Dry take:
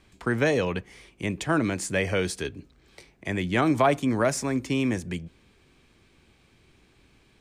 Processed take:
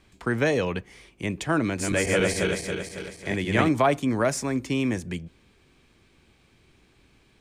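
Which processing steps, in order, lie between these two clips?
1.65–3.69 s: backward echo that repeats 138 ms, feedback 71%, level -1 dB

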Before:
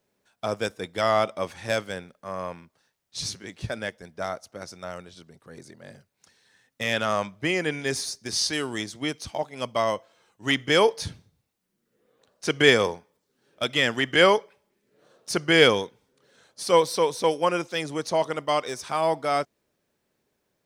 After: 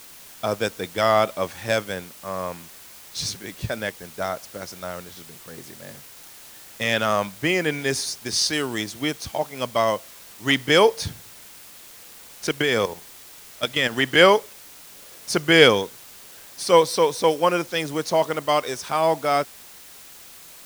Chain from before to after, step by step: 12.47–13.93 s: level held to a coarse grid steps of 12 dB; word length cut 8-bit, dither triangular; trim +3.5 dB

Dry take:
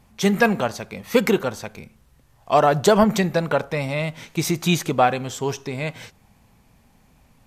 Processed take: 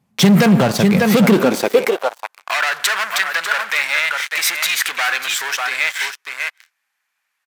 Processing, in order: dynamic bell 6.3 kHz, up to -6 dB, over -48 dBFS, Q 3.1; delay 595 ms -11.5 dB; waveshaping leveller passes 5; compression, threshold -12 dBFS, peak gain reduction 6.5 dB; high-pass sweep 150 Hz -> 1.6 kHz, 1.18–2.55 s; trim -1.5 dB

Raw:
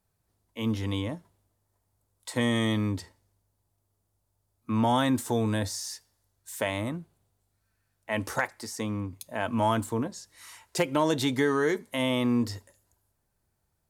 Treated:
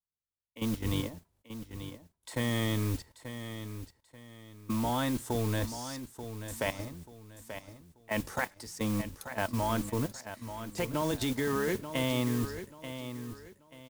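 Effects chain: octave divider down 1 oct, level -4 dB; gate with hold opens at -58 dBFS; level held to a coarse grid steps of 15 dB; modulation noise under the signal 15 dB; feedback delay 885 ms, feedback 30%, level -10.5 dB

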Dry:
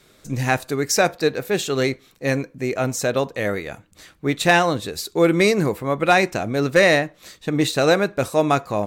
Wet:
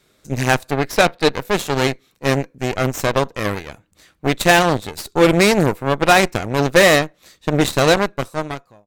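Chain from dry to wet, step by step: fade out at the end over 1.08 s; 0.71–1.32 s: resonant high shelf 5 kHz -9 dB, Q 1.5; Chebyshev shaper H 5 -25 dB, 7 -18 dB, 8 -17 dB, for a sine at -4.5 dBFS; trim +3 dB

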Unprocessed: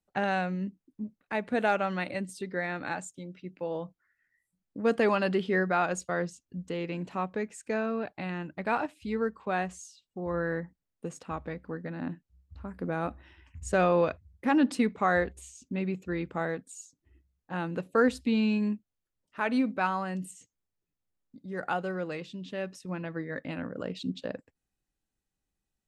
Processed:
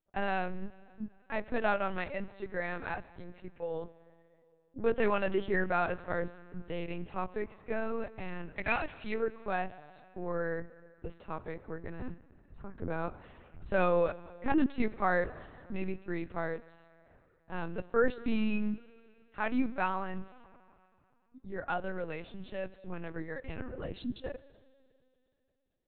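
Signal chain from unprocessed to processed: 8.49–9.14 s: resonant high shelf 1.6 kHz +7.5 dB, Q 1.5; Schroeder reverb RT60 2.8 s, combs from 31 ms, DRR 17 dB; LPC vocoder at 8 kHz pitch kept; trim -3 dB

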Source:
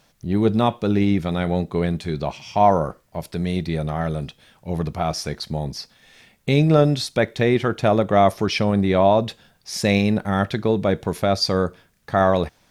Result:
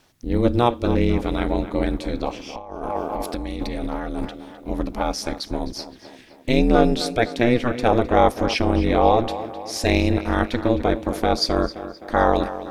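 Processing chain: ring modulator 120 Hz; tape echo 260 ms, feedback 59%, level -12 dB, low-pass 3.4 kHz; 2.55–4.25 s: compressor with a negative ratio -31 dBFS, ratio -1; trim +2.5 dB

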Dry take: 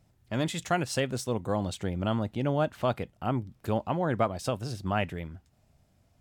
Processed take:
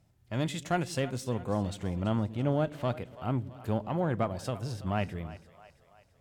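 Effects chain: Chebyshev shaper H 4 -26 dB, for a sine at -13.5 dBFS; harmonic-percussive split percussive -6 dB; two-band feedback delay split 470 Hz, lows 115 ms, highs 332 ms, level -16 dB

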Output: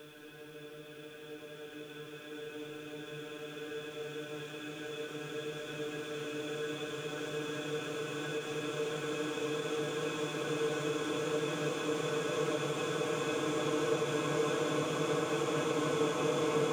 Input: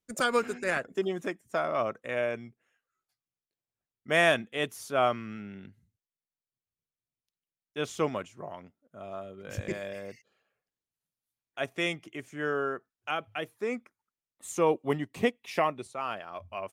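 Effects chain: upward compressor, threshold -40 dBFS; Paulstretch 35×, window 1.00 s, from 7.45 s; endings held to a fixed fall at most 160 dB/s

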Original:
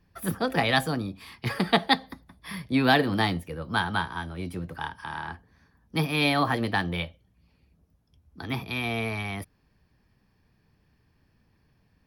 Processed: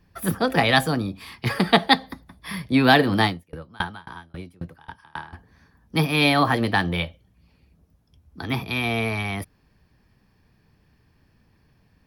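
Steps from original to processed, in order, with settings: 3.26–5.33 s: sawtooth tremolo in dB decaying 3.7 Hz, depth 30 dB; trim +5 dB

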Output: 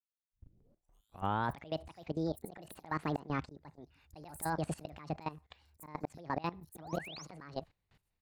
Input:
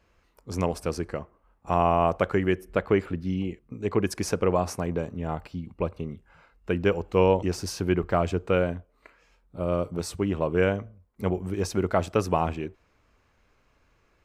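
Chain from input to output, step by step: tape start-up on the opening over 2.52 s; gate with hold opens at -54 dBFS; bass shelf 84 Hz +8 dB; slow attack 477 ms; level held to a coarse grid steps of 17 dB; painted sound rise, 11.35–12.06 s, 380–4100 Hz -49 dBFS; bands offset in time highs, lows 510 ms, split 4.3 kHz; speed mistake 45 rpm record played at 78 rpm; trim +1 dB

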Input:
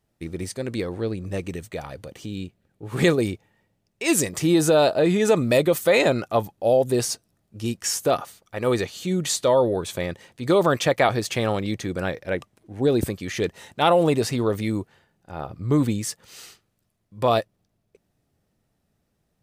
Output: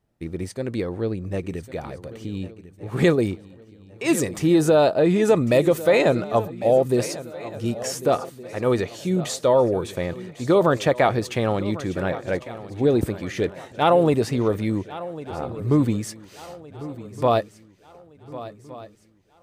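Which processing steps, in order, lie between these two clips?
treble shelf 2.4 kHz -8 dB; on a send: shuffle delay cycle 1466 ms, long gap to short 3:1, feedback 38%, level -16 dB; on the sum: trim +1.5 dB

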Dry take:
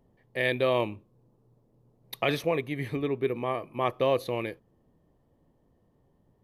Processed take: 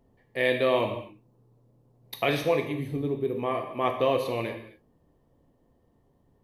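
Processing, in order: 2.72–3.39 s: peaking EQ 1.9 kHz -14.5 dB 2.1 oct; gated-style reverb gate 290 ms falling, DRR 3.5 dB

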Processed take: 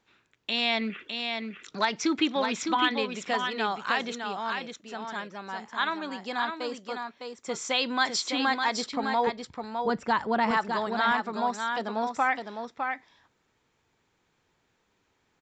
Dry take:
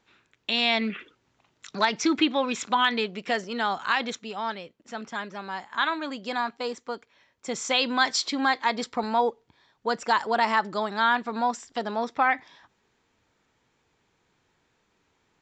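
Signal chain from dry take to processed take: 9.27–10.51 s: tone controls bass +14 dB, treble -9 dB; delay 607 ms -5.5 dB; trim -3 dB

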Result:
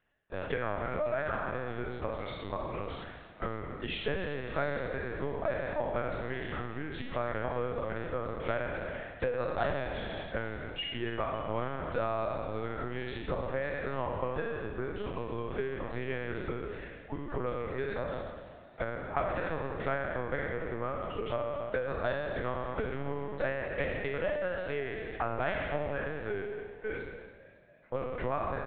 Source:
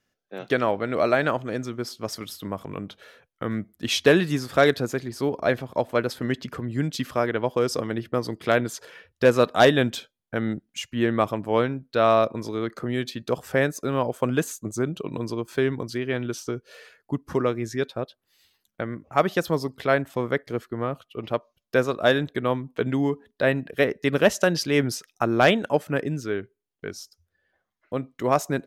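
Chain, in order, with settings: spectral sustain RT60 1.08 s; compression 8:1, threshold -28 dBFS, peak gain reduction 19 dB; three-band isolator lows -12 dB, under 330 Hz, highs -13 dB, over 2.9 kHz; LPC vocoder at 8 kHz pitch kept; frequency-shifting echo 277 ms, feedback 53%, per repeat +52 Hz, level -16 dB

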